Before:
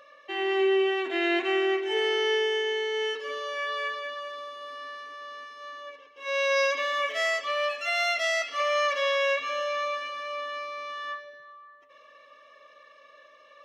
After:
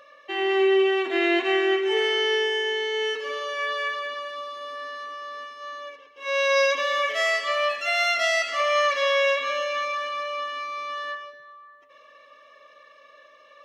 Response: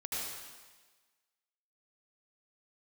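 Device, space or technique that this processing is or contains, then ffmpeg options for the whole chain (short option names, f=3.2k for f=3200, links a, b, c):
keyed gated reverb: -filter_complex "[0:a]asplit=3[a][b][c];[1:a]atrim=start_sample=2205[d];[b][d]afir=irnorm=-1:irlink=0[e];[c]apad=whole_len=601931[f];[e][f]sidechaingate=range=-33dB:threshold=-43dB:ratio=16:detection=peak,volume=-11dB[g];[a][g]amix=inputs=2:normalize=0,asettb=1/sr,asplit=3[h][i][j];[h]atrim=end=7.714[k];[i]atrim=start=7.71:end=8.39,asetpts=PTS-STARTPTS,afade=t=in:d=0.004:c=qsin,afade=t=out:st=0.676:d=0.004:c=qsin,lowshelf=f=210:g=7[l];[j]atrim=start=8.386[m];[k][l]acrossfade=d=0.004:c1=hsin:c2=qsin[n];[n][m]acrossfade=d=0.004:c1=qsin:c2=hsin,volume=2dB"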